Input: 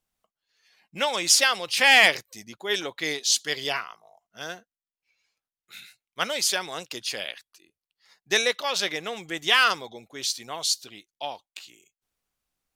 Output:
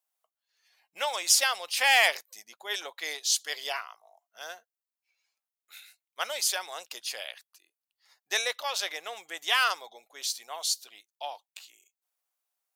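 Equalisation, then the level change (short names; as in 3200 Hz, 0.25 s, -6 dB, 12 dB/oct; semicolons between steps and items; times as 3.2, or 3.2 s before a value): resonant high-pass 690 Hz, resonance Q 1.5; high shelf 8600 Hz +11 dB; -7.0 dB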